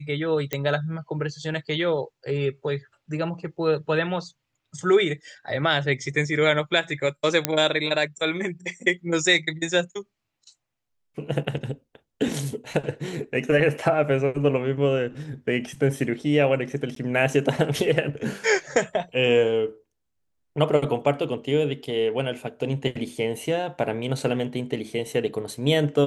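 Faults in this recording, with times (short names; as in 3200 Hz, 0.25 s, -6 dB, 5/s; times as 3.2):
0.53 pop -11 dBFS
7.45 pop -2 dBFS
16.95–16.96 gap 13 ms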